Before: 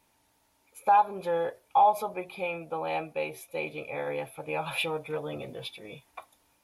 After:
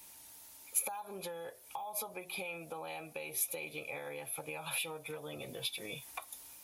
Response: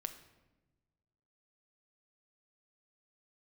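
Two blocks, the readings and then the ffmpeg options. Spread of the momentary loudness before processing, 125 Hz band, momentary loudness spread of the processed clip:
17 LU, −9.0 dB, 11 LU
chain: -filter_complex "[0:a]acrossover=split=160|5300[link_01][link_02][link_03];[link_02]alimiter=level_in=1dB:limit=-24dB:level=0:latency=1:release=91,volume=-1dB[link_04];[link_01][link_04][link_03]amix=inputs=3:normalize=0,acompressor=threshold=-45dB:ratio=10,crystalizer=i=4.5:c=0,volume=3dB"

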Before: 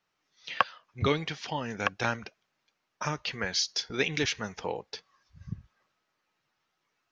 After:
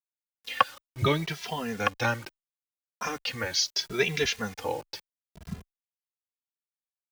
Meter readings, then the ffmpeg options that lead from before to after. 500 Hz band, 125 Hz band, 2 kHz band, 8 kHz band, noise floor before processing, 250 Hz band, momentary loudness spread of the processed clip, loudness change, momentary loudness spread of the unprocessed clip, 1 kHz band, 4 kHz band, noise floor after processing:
+2.5 dB, +2.5 dB, +1.5 dB, can't be measured, −80 dBFS, +1.5 dB, 17 LU, +2.0 dB, 16 LU, +3.0 dB, +2.0 dB, below −85 dBFS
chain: -filter_complex "[0:a]acrusher=bits=7:mix=0:aa=0.000001,asplit=2[link_01][link_02];[link_02]adelay=2.6,afreqshift=0.75[link_03];[link_01][link_03]amix=inputs=2:normalize=1,volume=5dB"

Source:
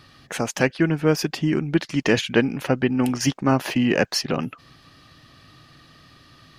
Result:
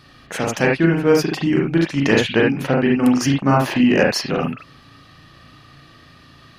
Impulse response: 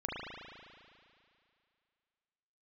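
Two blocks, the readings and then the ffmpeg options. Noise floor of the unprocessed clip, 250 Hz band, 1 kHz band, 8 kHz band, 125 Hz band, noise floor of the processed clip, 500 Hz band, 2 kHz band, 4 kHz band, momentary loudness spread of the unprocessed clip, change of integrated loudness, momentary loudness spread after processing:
−53 dBFS, +5.0 dB, +5.5 dB, +0.5 dB, +4.0 dB, −48 dBFS, +5.0 dB, +4.5 dB, +2.0 dB, 8 LU, +4.5 dB, 9 LU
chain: -filter_complex "[1:a]atrim=start_sample=2205,atrim=end_sample=4410[link_01];[0:a][link_01]afir=irnorm=-1:irlink=0,volume=3dB"

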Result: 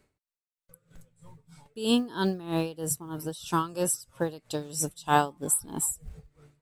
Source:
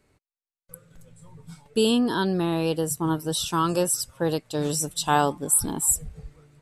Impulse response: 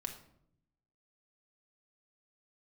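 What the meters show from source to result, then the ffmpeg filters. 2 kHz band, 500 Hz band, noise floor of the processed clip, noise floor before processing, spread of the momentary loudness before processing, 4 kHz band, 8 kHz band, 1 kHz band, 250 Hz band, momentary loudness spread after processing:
−3.0 dB, −6.0 dB, below −85 dBFS, below −85 dBFS, 6 LU, −6.5 dB, −5.5 dB, −3.0 dB, −5.0 dB, 10 LU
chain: -af "acrusher=bits=9:mode=log:mix=0:aa=0.000001,aeval=exprs='val(0)*pow(10,-18*(0.5-0.5*cos(2*PI*3.1*n/s))/20)':channel_layout=same"

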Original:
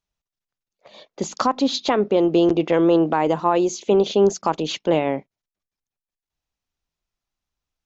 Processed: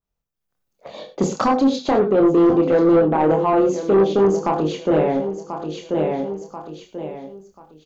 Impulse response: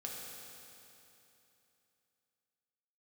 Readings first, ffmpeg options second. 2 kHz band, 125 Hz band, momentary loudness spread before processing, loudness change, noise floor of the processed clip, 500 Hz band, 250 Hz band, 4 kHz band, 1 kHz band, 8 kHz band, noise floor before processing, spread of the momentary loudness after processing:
0.0 dB, +3.5 dB, 7 LU, +1.5 dB, −78 dBFS, +3.0 dB, +3.0 dB, −6.5 dB, +2.0 dB, can't be measured, below −85 dBFS, 17 LU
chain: -filter_complex "[0:a]aecho=1:1:1037|2074|3111:0.2|0.0499|0.0125,asplit=2[link_01][link_02];[1:a]atrim=start_sample=2205,afade=type=out:start_time=0.14:duration=0.01,atrim=end_sample=6615,adelay=26[link_03];[link_02][link_03]afir=irnorm=-1:irlink=0,volume=0.5dB[link_04];[link_01][link_04]amix=inputs=2:normalize=0,dynaudnorm=framelen=340:gausssize=3:maxgain=13dB,equalizer=frequency=4000:width=0.31:gain=-9.5,asoftclip=type=tanh:threshold=-11dB,adynamicequalizer=threshold=0.0126:dfrequency=2400:dqfactor=0.7:tfrequency=2400:tqfactor=0.7:attack=5:release=100:ratio=0.375:range=2.5:mode=cutabove:tftype=highshelf,volume=1.5dB"

